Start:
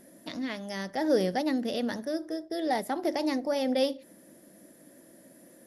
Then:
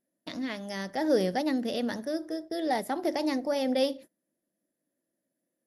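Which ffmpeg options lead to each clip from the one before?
-af "agate=range=-29dB:threshold=-44dB:ratio=16:detection=peak"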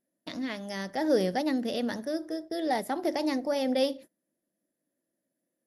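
-af anull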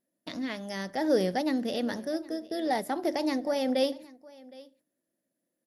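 -af "aecho=1:1:765:0.0794"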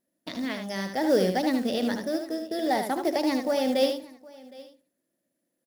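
-af "acrusher=bits=6:mode=log:mix=0:aa=0.000001,aecho=1:1:76:0.473,volume=2.5dB"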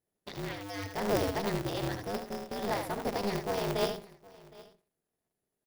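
-af "aeval=exprs='val(0)*sgn(sin(2*PI*100*n/s))':c=same,volume=-7dB"

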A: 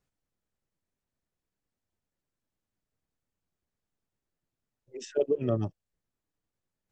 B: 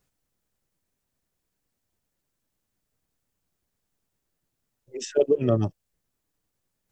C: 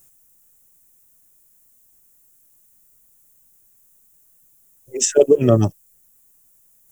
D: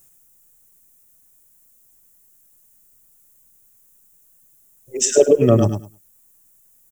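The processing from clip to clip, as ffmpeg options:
-af "highshelf=f=6.3k:g=7,volume=6dB"
-af "aexciter=amount=4.5:drive=8.5:freq=6.4k,volume=8dB"
-af "aecho=1:1:103|206|309:0.447|0.0759|0.0129"

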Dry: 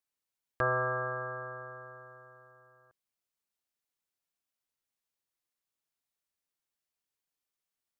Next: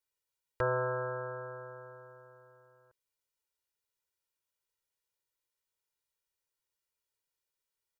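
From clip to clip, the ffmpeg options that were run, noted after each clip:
-af "aecho=1:1:2.1:1,volume=-3dB"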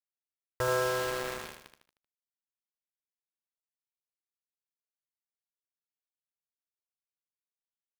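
-filter_complex "[0:a]acrusher=bits=5:mix=0:aa=0.000001,asplit=2[a][b];[b]aecho=0:1:77|154|231|308|385:0.501|0.221|0.097|0.0427|0.0188[c];[a][c]amix=inputs=2:normalize=0"

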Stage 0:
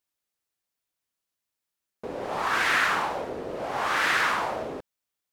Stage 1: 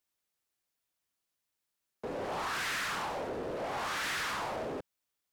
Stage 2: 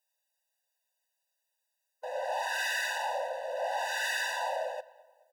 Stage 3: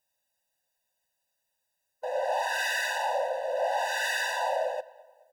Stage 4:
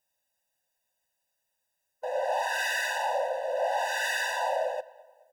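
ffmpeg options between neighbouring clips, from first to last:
-filter_complex "[0:a]acrossover=split=210|3000[a][b][c];[b]acompressor=threshold=-29dB:ratio=6[d];[a][d][c]amix=inputs=3:normalize=0,asoftclip=type=tanh:threshold=-31.5dB"
-filter_complex "[0:a]asplit=2[a][b];[b]adelay=214,lowpass=f=3.5k:p=1,volume=-21.5dB,asplit=2[c][d];[d]adelay=214,lowpass=f=3.5k:p=1,volume=0.47,asplit=2[e][f];[f]adelay=214,lowpass=f=3.5k:p=1,volume=0.47[g];[a][c][e][g]amix=inputs=4:normalize=0,afftfilt=real='re*eq(mod(floor(b*sr/1024/500),2),1)':imag='im*eq(mod(floor(b*sr/1024/500),2),1)':win_size=1024:overlap=0.75,volume=5.5dB"
-af "lowshelf=f=380:g=11.5,volume=2dB"
-af "bandreject=f=4.2k:w=7.5"

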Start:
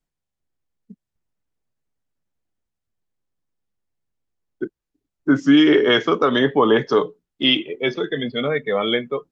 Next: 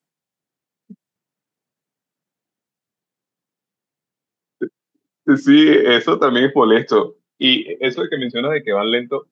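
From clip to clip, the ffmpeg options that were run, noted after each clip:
-af "highpass=f=140:w=0.5412,highpass=f=140:w=1.3066,volume=3dB"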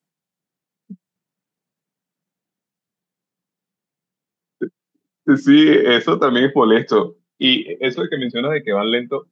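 -af "equalizer=f=180:w=3.1:g=7.5,volume=-1dB"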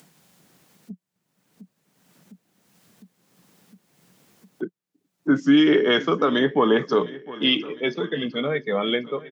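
-af "aecho=1:1:707|1414|2121|2828|3535:0.112|0.064|0.0365|0.0208|0.0118,acompressor=mode=upward:threshold=-26dB:ratio=2.5,volume=-5.5dB"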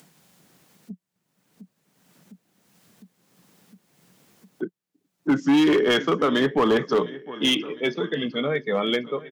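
-af "volume=14.5dB,asoftclip=hard,volume=-14.5dB"

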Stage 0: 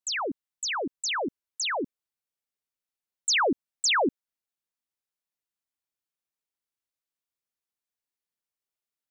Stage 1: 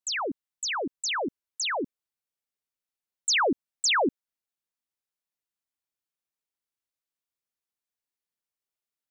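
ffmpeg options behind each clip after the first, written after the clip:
-af anull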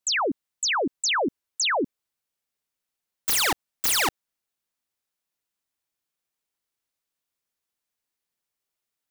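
-filter_complex "[0:a]asplit=2[a][b];[b]alimiter=level_in=3dB:limit=-24dB:level=0:latency=1,volume=-3dB,volume=0dB[c];[a][c]amix=inputs=2:normalize=0,aeval=exprs='(mod(8.91*val(0)+1,2)-1)/8.91':c=same"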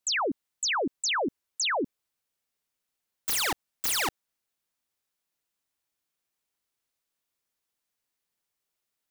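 -af "alimiter=level_in=1dB:limit=-24dB:level=0:latency=1:release=10,volume=-1dB,volume=1dB"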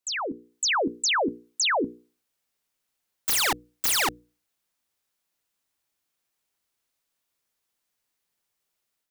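-af "bandreject=f=60:t=h:w=6,bandreject=f=120:t=h:w=6,bandreject=f=180:t=h:w=6,bandreject=f=240:t=h:w=6,bandreject=f=300:t=h:w=6,bandreject=f=360:t=h:w=6,bandreject=f=420:t=h:w=6,bandreject=f=480:t=h:w=6,dynaudnorm=f=310:g=3:m=7dB,volume=-3dB"

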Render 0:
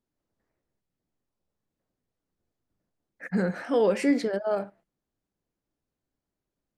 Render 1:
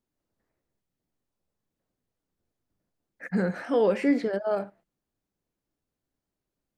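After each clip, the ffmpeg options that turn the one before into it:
-filter_complex "[0:a]acrossover=split=3300[a][b];[b]acompressor=threshold=-51dB:ratio=4:attack=1:release=60[c];[a][c]amix=inputs=2:normalize=0"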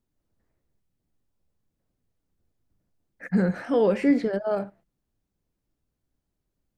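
-af "lowshelf=f=160:g=11.5"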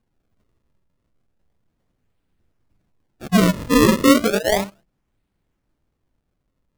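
-af "acrusher=samples=33:mix=1:aa=0.000001:lfo=1:lforange=52.8:lforate=0.33,volume=7dB"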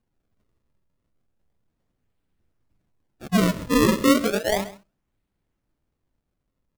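-af "aecho=1:1:133:0.133,volume=-4.5dB"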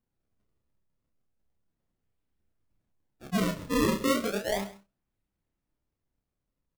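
-filter_complex "[0:a]asplit=2[a][b];[b]adelay=30,volume=-5.5dB[c];[a][c]amix=inputs=2:normalize=0,volume=-8dB"

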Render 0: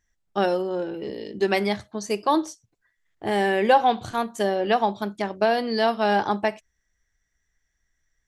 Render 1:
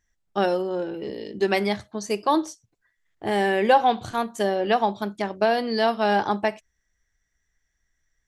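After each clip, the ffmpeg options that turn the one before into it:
-af anull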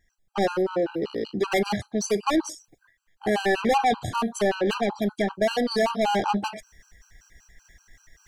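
-af "areverse,acompressor=mode=upward:threshold=-43dB:ratio=2.5,areverse,asoftclip=type=tanh:threshold=-25dB,afftfilt=real='re*gt(sin(2*PI*5.2*pts/sr)*(1-2*mod(floor(b*sr/1024/800),2)),0)':imag='im*gt(sin(2*PI*5.2*pts/sr)*(1-2*mod(floor(b*sr/1024/800),2)),0)':win_size=1024:overlap=0.75,volume=8dB"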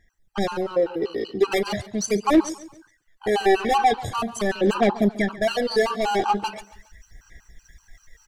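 -af "aphaser=in_gain=1:out_gain=1:delay=2.7:decay=0.54:speed=0.41:type=sinusoidal,asoftclip=type=hard:threshold=-9.5dB,aecho=1:1:139|278|417:0.119|0.0487|0.02"

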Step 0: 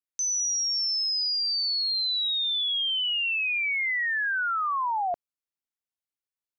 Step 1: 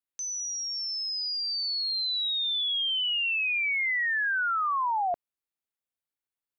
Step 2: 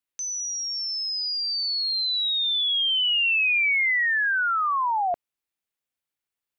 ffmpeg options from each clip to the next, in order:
-af "equalizer=f=5.9k:t=o:w=0.77:g=-6.5"
-af "equalizer=f=2.5k:w=1.5:g=3,volume=3dB"

